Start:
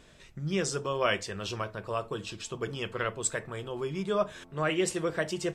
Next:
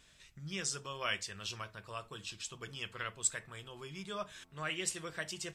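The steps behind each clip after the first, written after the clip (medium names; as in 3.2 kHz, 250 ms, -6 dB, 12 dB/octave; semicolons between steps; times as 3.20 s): amplifier tone stack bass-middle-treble 5-5-5; trim +4.5 dB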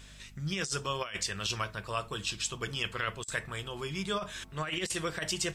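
hum 50 Hz, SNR 22 dB; compressor with a negative ratio -40 dBFS, ratio -0.5; trim +8 dB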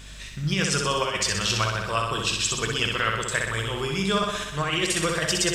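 flutter echo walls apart 10.7 m, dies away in 0.94 s; trim +7.5 dB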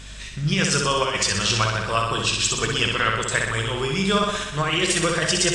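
trim +3.5 dB; AAC 48 kbps 22.05 kHz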